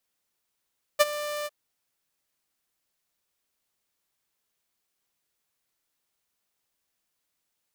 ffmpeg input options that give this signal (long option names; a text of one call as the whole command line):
ffmpeg -f lavfi -i "aevalsrc='0.282*(2*mod(593*t,1)-1)':duration=0.504:sample_rate=44100,afade=type=in:duration=0.021,afade=type=out:start_time=0.021:duration=0.029:silence=0.15,afade=type=out:start_time=0.47:duration=0.034" out.wav